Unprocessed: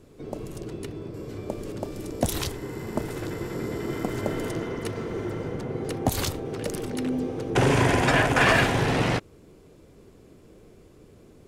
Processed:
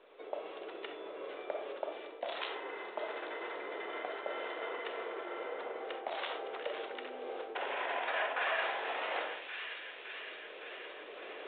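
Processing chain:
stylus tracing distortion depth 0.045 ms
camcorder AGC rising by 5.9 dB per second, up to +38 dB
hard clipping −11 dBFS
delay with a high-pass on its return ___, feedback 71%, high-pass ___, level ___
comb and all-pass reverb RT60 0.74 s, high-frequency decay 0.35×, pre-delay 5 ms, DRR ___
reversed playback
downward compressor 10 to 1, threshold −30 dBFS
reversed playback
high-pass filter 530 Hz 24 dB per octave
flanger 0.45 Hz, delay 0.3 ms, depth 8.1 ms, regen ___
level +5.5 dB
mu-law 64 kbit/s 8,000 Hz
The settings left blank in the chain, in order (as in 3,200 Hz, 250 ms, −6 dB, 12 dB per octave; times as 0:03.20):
563 ms, 2,200 Hz, −16 dB, 7 dB, −87%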